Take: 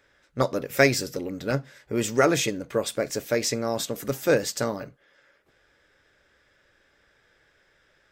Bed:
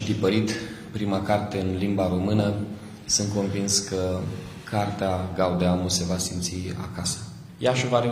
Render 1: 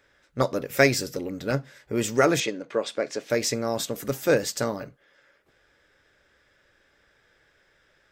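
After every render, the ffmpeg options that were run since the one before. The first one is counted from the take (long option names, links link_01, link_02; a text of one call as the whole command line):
ffmpeg -i in.wav -filter_complex "[0:a]asettb=1/sr,asplit=3[link_01][link_02][link_03];[link_01]atrim=end=2.404[link_04];[link_02]atrim=start=2.4:end=3.3,asetpts=PTS-STARTPTS,afade=type=in:duration=0.004:curve=qsin,afade=type=out:start_time=0.896:duration=0.004:curve=qsin,highpass=260,lowpass=5100[link_05];[link_03]atrim=start=3.296[link_06];[link_04][link_05]acrossfade=duration=0.004:curve1=hsin:curve2=qsin[link_07];[link_07][link_06]acrossfade=duration=0.004:curve1=qsin:curve2=hsin" out.wav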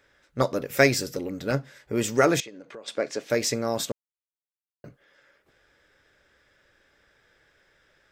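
ffmpeg -i in.wav -filter_complex "[0:a]asettb=1/sr,asplit=3[link_01][link_02][link_03];[link_01]atrim=end=2.404[link_04];[link_02]atrim=start=2.4:end=2.88,asetpts=PTS-STARTPTS,afade=type=in:duration=0.004:curve=qsin,afade=type=out:start_time=0.476:duration=0.004:curve=qsin,acompressor=threshold=-41dB:ratio=4:attack=3.2:release=140:knee=1:detection=peak[link_05];[link_03]atrim=start=2.876[link_06];[link_04][link_05]acrossfade=duration=0.004:curve1=hsin:curve2=qsin[link_07];[link_07][link_06]acrossfade=duration=0.004:curve1=qsin:curve2=hsin,asplit=3[link_08][link_09][link_10];[link_08]atrim=end=3.92,asetpts=PTS-STARTPTS,afade=type=out:start_time=3.916:duration=0.004:curve=hsin[link_11];[link_09]atrim=start=3.92:end=4.84,asetpts=PTS-STARTPTS,volume=0[link_12];[link_10]atrim=start=4.84,asetpts=PTS-STARTPTS,afade=type=in:duration=0.004:curve=hsin[link_13];[link_11][link_12][link_13]concat=n=3:v=0:a=1" out.wav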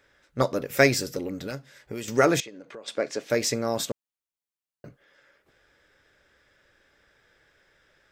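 ffmpeg -i in.wav -filter_complex "[0:a]asettb=1/sr,asplit=3[link_01][link_02][link_03];[link_01]atrim=end=1.464[link_04];[link_02]atrim=start=1.46:end=2.08,asetpts=PTS-STARTPTS,afade=type=in:duration=0.004:curve=qsin,afade=type=out:start_time=0.616:duration=0.004:curve=qsin,acrossover=split=2400|7100[link_05][link_06][link_07];[link_05]acompressor=threshold=-34dB:ratio=4[link_08];[link_06]acompressor=threshold=-43dB:ratio=4[link_09];[link_07]acompressor=threshold=-50dB:ratio=4[link_10];[link_08][link_09][link_10]amix=inputs=3:normalize=0[link_11];[link_03]atrim=start=2.076[link_12];[link_04][link_11]acrossfade=duration=0.004:curve1=hsin:curve2=qsin[link_13];[link_13][link_12]acrossfade=duration=0.004:curve1=qsin:curve2=hsin" out.wav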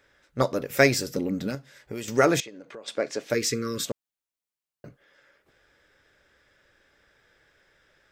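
ffmpeg -i in.wav -filter_complex "[0:a]asettb=1/sr,asplit=3[link_01][link_02][link_03];[link_01]atrim=end=1.154[link_04];[link_02]atrim=start=1.15:end=1.55,asetpts=PTS-STARTPTS,afade=type=in:duration=0.004:curve=qsin,afade=type=out:start_time=0.396:duration=0.004:curve=qsin,equalizer=frequency=210:width_type=o:width=0.77:gain=10.5[link_05];[link_03]atrim=start=1.546[link_06];[link_04][link_05]acrossfade=duration=0.004:curve1=hsin:curve2=qsin[link_07];[link_07][link_06]acrossfade=duration=0.004:curve1=qsin:curve2=hsin,asplit=3[link_08][link_09][link_10];[link_08]afade=type=out:start_time=3.33:duration=0.02[link_11];[link_09]asuperstop=centerf=750:order=12:qfactor=1.3,afade=type=in:start_time=3.33:duration=0.02,afade=type=out:start_time=3.84:duration=0.02[link_12];[link_10]afade=type=in:start_time=3.84:duration=0.02[link_13];[link_11][link_12][link_13]amix=inputs=3:normalize=0" out.wav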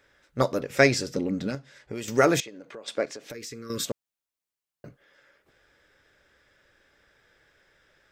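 ffmpeg -i in.wav -filter_complex "[0:a]asettb=1/sr,asplit=3[link_01][link_02][link_03];[link_01]atrim=end=0.604[link_04];[link_02]atrim=start=0.6:end=2.02,asetpts=PTS-STARTPTS,afade=type=in:duration=0.004:curve=qsin,afade=type=out:start_time=1.416:duration=0.004:curve=qsin,lowpass=7700[link_05];[link_03]atrim=start=2.016[link_06];[link_04][link_05]acrossfade=duration=0.004:curve1=hsin:curve2=qsin[link_07];[link_07][link_06]acrossfade=duration=0.004:curve1=qsin:curve2=hsin,asettb=1/sr,asplit=3[link_08][link_09][link_10];[link_08]atrim=end=3.054[link_11];[link_09]atrim=start=3.05:end=3.7,asetpts=PTS-STARTPTS,afade=type=in:duration=0.004:curve=qsin,afade=type=out:start_time=0.646:duration=0.004:curve=qsin,acompressor=threshold=-36dB:ratio=8:attack=3.2:release=140:knee=1:detection=peak[link_12];[link_10]atrim=start=3.696[link_13];[link_11][link_12]acrossfade=duration=0.004:curve1=hsin:curve2=qsin[link_14];[link_14][link_13]acrossfade=duration=0.004:curve1=qsin:curve2=hsin" out.wav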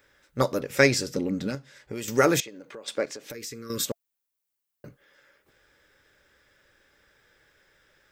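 ffmpeg -i in.wav -af "highshelf=frequency=11000:gain=11.5,bandreject=frequency=680:width=13" out.wav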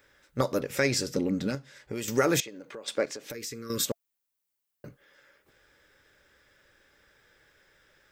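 ffmpeg -i in.wav -af "alimiter=limit=-13dB:level=0:latency=1:release=147" out.wav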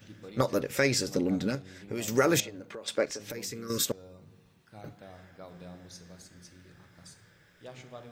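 ffmpeg -i in.wav -i bed.wav -filter_complex "[1:a]volume=-24.5dB[link_01];[0:a][link_01]amix=inputs=2:normalize=0" out.wav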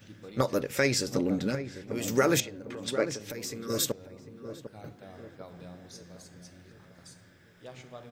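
ffmpeg -i in.wav -filter_complex "[0:a]asplit=2[link_01][link_02];[link_02]adelay=750,lowpass=frequency=990:poles=1,volume=-10dB,asplit=2[link_03][link_04];[link_04]adelay=750,lowpass=frequency=990:poles=1,volume=0.51,asplit=2[link_05][link_06];[link_06]adelay=750,lowpass=frequency=990:poles=1,volume=0.51,asplit=2[link_07][link_08];[link_08]adelay=750,lowpass=frequency=990:poles=1,volume=0.51,asplit=2[link_09][link_10];[link_10]adelay=750,lowpass=frequency=990:poles=1,volume=0.51,asplit=2[link_11][link_12];[link_12]adelay=750,lowpass=frequency=990:poles=1,volume=0.51[link_13];[link_01][link_03][link_05][link_07][link_09][link_11][link_13]amix=inputs=7:normalize=0" out.wav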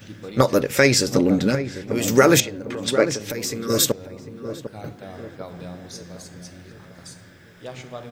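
ffmpeg -i in.wav -af "volume=10dB" out.wav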